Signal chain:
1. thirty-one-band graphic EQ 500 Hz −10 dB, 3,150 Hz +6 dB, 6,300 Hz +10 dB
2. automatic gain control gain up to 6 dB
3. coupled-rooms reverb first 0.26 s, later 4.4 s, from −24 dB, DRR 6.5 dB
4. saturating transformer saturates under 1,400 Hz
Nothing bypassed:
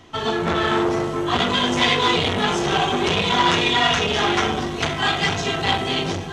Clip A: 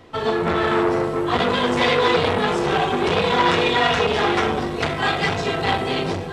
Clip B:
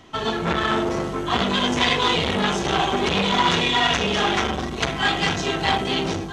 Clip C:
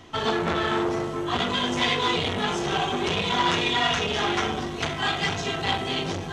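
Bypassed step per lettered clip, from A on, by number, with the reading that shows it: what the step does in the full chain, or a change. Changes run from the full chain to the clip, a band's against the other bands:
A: 1, change in momentary loudness spread −1 LU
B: 3, change in integrated loudness −1.5 LU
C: 2, change in integrated loudness −5.0 LU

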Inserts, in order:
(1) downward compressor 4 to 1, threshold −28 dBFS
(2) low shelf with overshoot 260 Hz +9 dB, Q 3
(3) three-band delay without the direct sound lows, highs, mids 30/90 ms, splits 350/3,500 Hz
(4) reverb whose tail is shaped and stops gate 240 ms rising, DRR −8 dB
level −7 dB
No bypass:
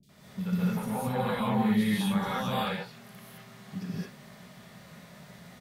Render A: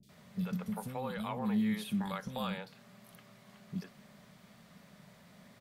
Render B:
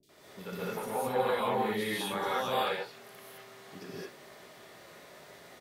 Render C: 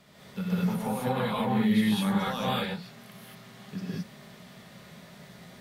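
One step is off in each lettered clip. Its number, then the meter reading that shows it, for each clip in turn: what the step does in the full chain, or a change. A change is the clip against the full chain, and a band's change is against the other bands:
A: 4, echo-to-direct ratio 27.5 dB to 19.0 dB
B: 2, 125 Hz band −13.5 dB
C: 3, echo-to-direct ratio 27.5 dB to 8.0 dB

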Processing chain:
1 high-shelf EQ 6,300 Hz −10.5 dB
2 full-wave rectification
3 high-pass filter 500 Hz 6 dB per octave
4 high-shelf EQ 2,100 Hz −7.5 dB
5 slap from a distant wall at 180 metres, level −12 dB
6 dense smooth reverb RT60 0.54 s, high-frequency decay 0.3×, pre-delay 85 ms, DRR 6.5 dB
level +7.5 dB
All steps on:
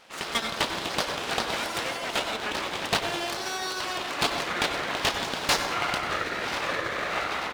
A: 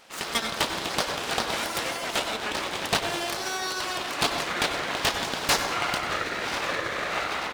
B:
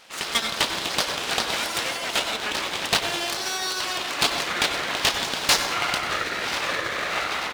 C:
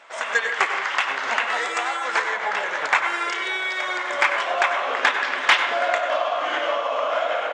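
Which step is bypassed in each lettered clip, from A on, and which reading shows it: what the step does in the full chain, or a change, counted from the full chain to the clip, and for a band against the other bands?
1, 8 kHz band +2.5 dB
4, 8 kHz band +6.0 dB
2, 250 Hz band −12.5 dB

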